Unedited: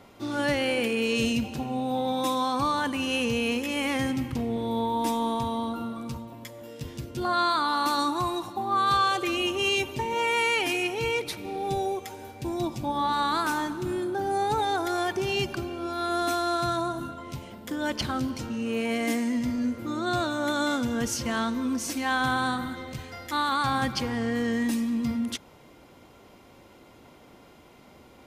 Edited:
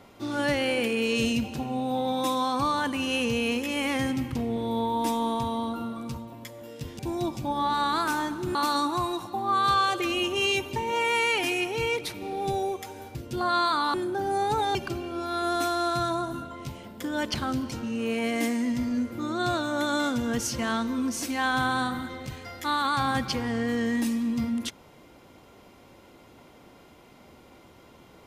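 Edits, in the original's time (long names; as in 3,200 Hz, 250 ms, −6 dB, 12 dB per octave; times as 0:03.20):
0:06.99–0:07.78: swap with 0:12.38–0:13.94
0:14.75–0:15.42: remove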